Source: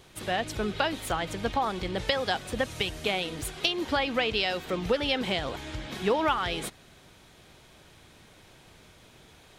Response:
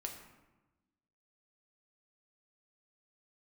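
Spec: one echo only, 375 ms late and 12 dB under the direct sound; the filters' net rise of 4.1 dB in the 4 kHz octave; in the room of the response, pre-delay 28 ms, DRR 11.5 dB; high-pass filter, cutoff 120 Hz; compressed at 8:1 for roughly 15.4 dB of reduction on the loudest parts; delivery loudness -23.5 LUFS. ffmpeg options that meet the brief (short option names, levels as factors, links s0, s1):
-filter_complex "[0:a]highpass=120,equalizer=f=4000:t=o:g=5.5,acompressor=threshold=0.0141:ratio=8,aecho=1:1:375:0.251,asplit=2[s0][s1];[1:a]atrim=start_sample=2205,adelay=28[s2];[s1][s2]afir=irnorm=-1:irlink=0,volume=0.316[s3];[s0][s3]amix=inputs=2:normalize=0,volume=6.68"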